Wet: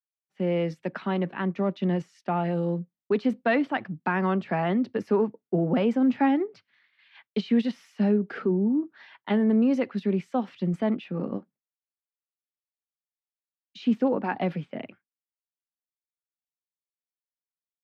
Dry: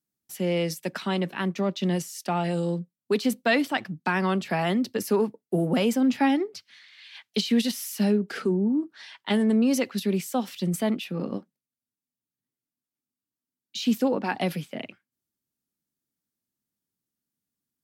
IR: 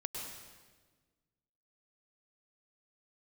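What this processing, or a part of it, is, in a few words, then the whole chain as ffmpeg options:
hearing-loss simulation: -af "lowpass=1.9k,agate=range=-33dB:threshold=-50dB:ratio=3:detection=peak"

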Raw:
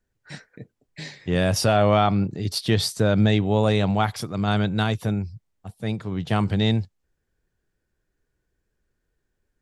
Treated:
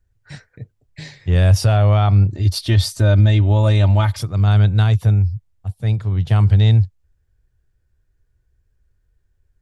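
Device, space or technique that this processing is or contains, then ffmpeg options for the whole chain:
car stereo with a boomy subwoofer: -filter_complex "[0:a]lowshelf=f=140:t=q:w=1.5:g=13,alimiter=limit=-5dB:level=0:latency=1:release=120,asettb=1/sr,asplit=3[a][b][c];[a]atrim=end=2.324[d];[b]atrim=start=2.32:end=4.23,asetpts=PTS-STARTPTS,afade=t=in:d=0.004:c=qsin,afade=t=out:st=1.906:d=0.004:c=qsin,aecho=1:1:3.3:0.83,atrim=end_sample=84231[e];[c]atrim=start=4.226[f];[d][e]acrossfade=d=0.004:c1=hsin:c2=qsin[g];[g][f]acrossfade=d=0.004:c1=qsin:c2=hsin"

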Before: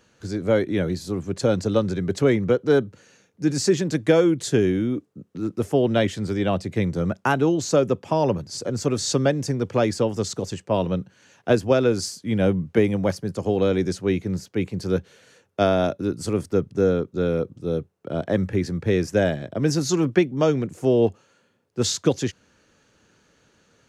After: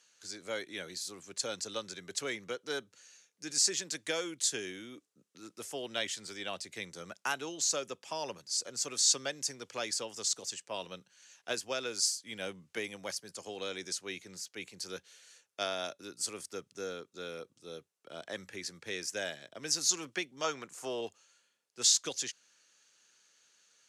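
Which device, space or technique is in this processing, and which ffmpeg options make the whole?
piezo pickup straight into a mixer: -filter_complex "[0:a]asettb=1/sr,asplit=3[a][b][c];[a]atrim=end=20.444[d];[b]atrim=start=20.44:end=21.01,asetpts=PTS-STARTPTS,afade=t=in:d=0.004:c=qsin,afade=t=out:st=0.566:d=0.004:c=qsin,equalizer=f=1.1k:t=o:w=1.2:g=11[e];[c]atrim=start=21.006[f];[d][e]acrossfade=d=0.004:c1=hsin:c2=qsin[g];[g][f]acrossfade=d=0.004:c1=qsin:c2=hsin,lowpass=8.9k,aderivative,volume=3.5dB"

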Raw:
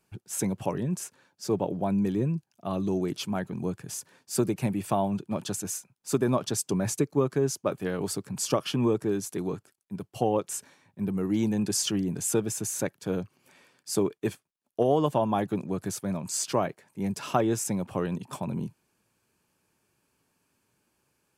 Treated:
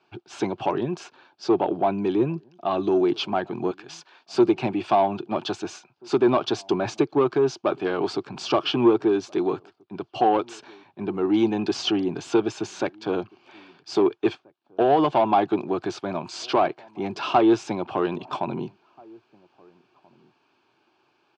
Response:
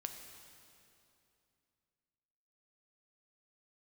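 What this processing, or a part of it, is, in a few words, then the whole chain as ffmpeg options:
overdrive pedal into a guitar cabinet: -filter_complex "[0:a]asettb=1/sr,asplit=3[a][b][c];[a]atrim=end=3.714[d];[b]atrim=start=3.71:end=4.34,asetpts=PTS-STARTPTS,afade=t=in:d=0.004:c=qsin,afade=t=out:st=0.626:d=0.004:c=qsin,highpass=f=980:p=1[e];[c]atrim=start=4.336[f];[d][e]acrossfade=d=0.004:c1=hsin:c2=qsin[g];[g][f]acrossfade=d=0.004:c1=qsin:c2=hsin,asplit=2[h][i];[i]highpass=f=720:p=1,volume=18dB,asoftclip=type=tanh:threshold=-10dB[j];[h][j]amix=inputs=2:normalize=0,lowpass=f=4.6k:p=1,volume=-6dB,highpass=90,equalizer=f=190:t=q:w=4:g=-7,equalizer=f=350:t=q:w=4:g=8,equalizer=f=510:t=q:w=4:g=-7,equalizer=f=750:t=q:w=4:g=5,equalizer=f=1.9k:t=q:w=4:g=-10,lowpass=f=4.3k:w=0.5412,lowpass=f=4.3k:w=1.3066,asplit=2[k][l];[l]adelay=1633,volume=-28dB,highshelf=f=4k:g=-36.7[m];[k][m]amix=inputs=2:normalize=0"

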